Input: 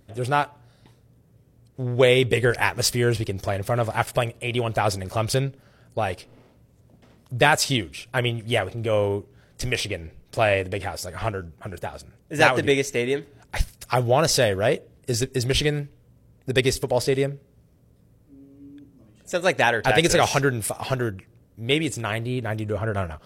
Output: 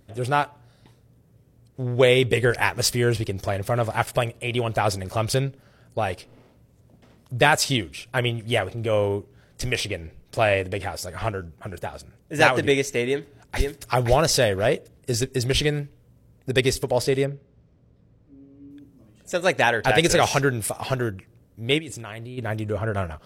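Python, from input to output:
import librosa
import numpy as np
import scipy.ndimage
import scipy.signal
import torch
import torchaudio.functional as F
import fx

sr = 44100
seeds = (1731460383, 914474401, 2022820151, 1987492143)

y = fx.echo_throw(x, sr, start_s=13.05, length_s=0.79, ms=520, feedback_pct=20, wet_db=-4.0)
y = fx.air_absorb(y, sr, metres=130.0, at=(17.25, 18.71))
y = fx.level_steps(y, sr, step_db=18, at=(21.78, 22.37), fade=0.02)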